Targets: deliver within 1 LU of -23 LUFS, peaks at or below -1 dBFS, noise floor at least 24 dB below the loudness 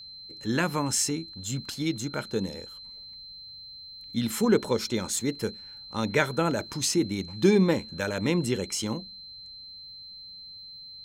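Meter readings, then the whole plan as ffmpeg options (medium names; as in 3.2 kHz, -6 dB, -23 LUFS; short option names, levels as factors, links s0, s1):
steady tone 4.1 kHz; tone level -42 dBFS; loudness -27.5 LUFS; peak level -8.5 dBFS; loudness target -23.0 LUFS
-> -af "bandreject=f=4100:w=30"
-af "volume=1.68"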